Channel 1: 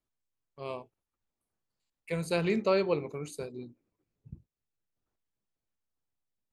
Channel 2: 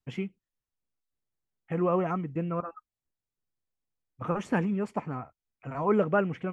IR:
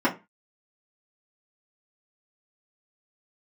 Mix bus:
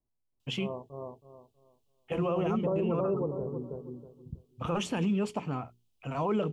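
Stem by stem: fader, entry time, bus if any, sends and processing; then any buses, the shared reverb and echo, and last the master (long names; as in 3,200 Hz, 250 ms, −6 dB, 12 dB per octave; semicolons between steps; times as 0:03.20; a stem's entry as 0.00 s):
−1.0 dB, 0.00 s, no send, echo send −3 dB, Butterworth low-pass 1,100 Hz 48 dB per octave; low-shelf EQ 270 Hz +6.5 dB
+2.0 dB, 0.40 s, no send, no echo send, high shelf with overshoot 2,400 Hz +6.5 dB, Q 3; mains-hum notches 60/120/180/240/300/360/420 Hz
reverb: not used
echo: repeating echo 321 ms, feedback 25%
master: brickwall limiter −21.5 dBFS, peak gain reduction 10 dB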